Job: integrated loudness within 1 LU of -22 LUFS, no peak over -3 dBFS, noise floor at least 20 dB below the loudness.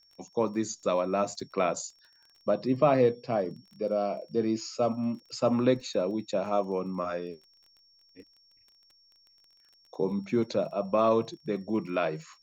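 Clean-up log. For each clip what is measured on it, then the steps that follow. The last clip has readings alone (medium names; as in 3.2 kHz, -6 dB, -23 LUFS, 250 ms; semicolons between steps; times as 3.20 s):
tick rate 24 per s; steady tone 5.5 kHz; tone level -60 dBFS; loudness -29.5 LUFS; peak level -11.5 dBFS; loudness target -22.0 LUFS
-> de-click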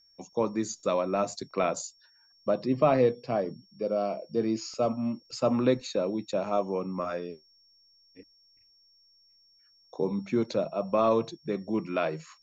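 tick rate 0 per s; steady tone 5.5 kHz; tone level -60 dBFS
-> band-stop 5.5 kHz, Q 30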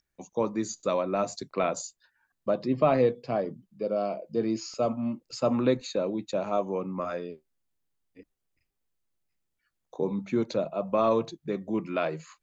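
steady tone not found; loudness -29.5 LUFS; peak level -11.5 dBFS; loudness target -22.0 LUFS
-> trim +7.5 dB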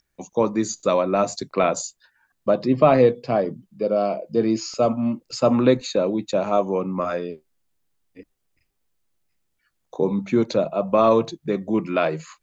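loudness -22.0 LUFS; peak level -4.0 dBFS; noise floor -74 dBFS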